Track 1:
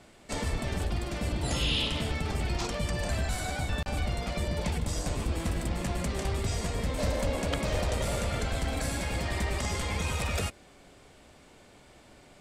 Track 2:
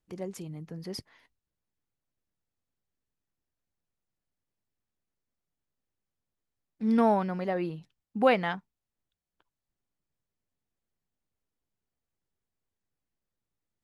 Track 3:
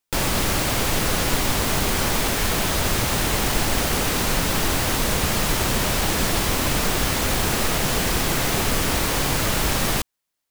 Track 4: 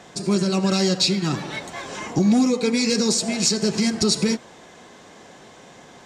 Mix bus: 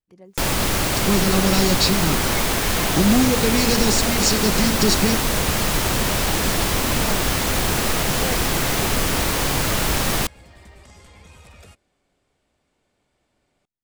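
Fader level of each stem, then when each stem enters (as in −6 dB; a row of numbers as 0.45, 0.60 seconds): −15.5, −9.0, +1.0, 0.0 decibels; 1.25, 0.00, 0.25, 0.80 seconds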